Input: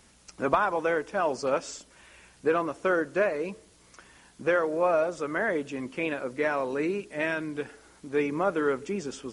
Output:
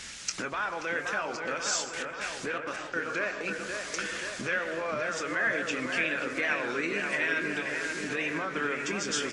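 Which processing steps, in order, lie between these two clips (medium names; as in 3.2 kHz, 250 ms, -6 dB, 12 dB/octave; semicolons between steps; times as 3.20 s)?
1.36–3.49 s: trance gate "xxxx.x.." 163 bpm -60 dB; reverberation RT60 0.40 s, pre-delay 107 ms, DRR 14.5 dB; compression 5:1, threshold -40 dBFS, peak gain reduction 19.5 dB; peak limiter -34 dBFS, peak gain reduction 8.5 dB; high-order bell 3.3 kHz +13 dB 2.8 oct; hum notches 60/120 Hz; doubling 24 ms -11 dB; feedback echo behind a low-pass 530 ms, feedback 69%, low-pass 2.8 kHz, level -5 dB; warped record 33 1/3 rpm, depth 100 cents; trim +6.5 dB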